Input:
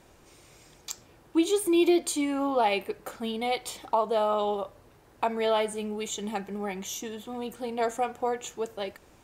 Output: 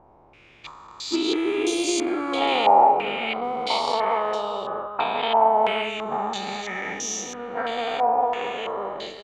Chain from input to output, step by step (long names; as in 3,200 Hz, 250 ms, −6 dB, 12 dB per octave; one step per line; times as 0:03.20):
every bin's largest magnitude spread in time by 480 ms
transient designer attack +7 dB, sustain −2 dB
on a send: single-tap delay 405 ms −9 dB
on the sum: low-pass on a step sequencer 3 Hz 870–5,800 Hz
level −7 dB